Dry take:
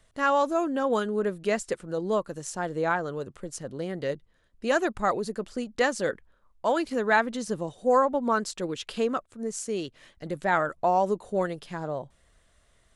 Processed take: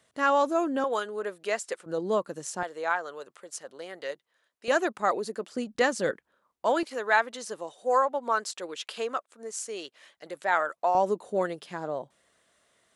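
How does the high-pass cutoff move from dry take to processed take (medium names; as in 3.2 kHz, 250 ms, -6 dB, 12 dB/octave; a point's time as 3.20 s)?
170 Hz
from 0.84 s 540 Hz
from 1.86 s 200 Hz
from 2.63 s 670 Hz
from 4.68 s 300 Hz
from 5.55 s 100 Hz
from 6.11 s 240 Hz
from 6.83 s 560 Hz
from 10.95 s 230 Hz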